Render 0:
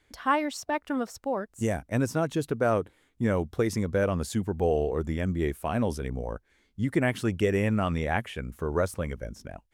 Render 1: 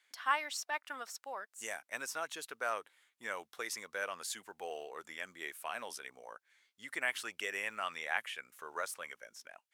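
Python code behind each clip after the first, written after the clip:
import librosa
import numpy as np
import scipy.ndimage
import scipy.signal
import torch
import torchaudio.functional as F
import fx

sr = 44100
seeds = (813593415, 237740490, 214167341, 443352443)

y = scipy.signal.sosfilt(scipy.signal.butter(2, 1300.0, 'highpass', fs=sr, output='sos'), x)
y = F.gain(torch.from_numpy(y), -1.5).numpy()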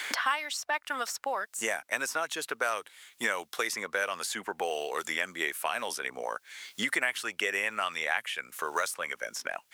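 y = fx.band_squash(x, sr, depth_pct=100)
y = F.gain(torch.from_numpy(y), 8.0).numpy()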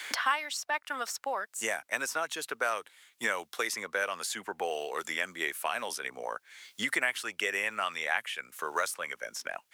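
y = fx.band_widen(x, sr, depth_pct=40)
y = F.gain(torch.from_numpy(y), -1.0).numpy()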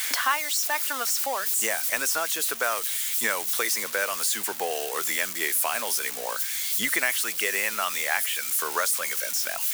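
y = x + 0.5 * 10.0 ** (-25.0 / 20.0) * np.diff(np.sign(x), prepend=np.sign(x[:1]))
y = F.gain(torch.from_numpy(y), 3.5).numpy()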